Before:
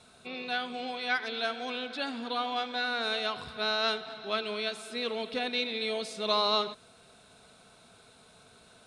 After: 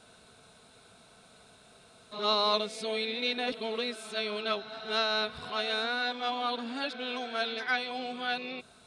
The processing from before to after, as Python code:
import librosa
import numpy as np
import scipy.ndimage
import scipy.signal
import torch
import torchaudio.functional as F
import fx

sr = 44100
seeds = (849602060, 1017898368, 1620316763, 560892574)

y = np.flip(x).copy()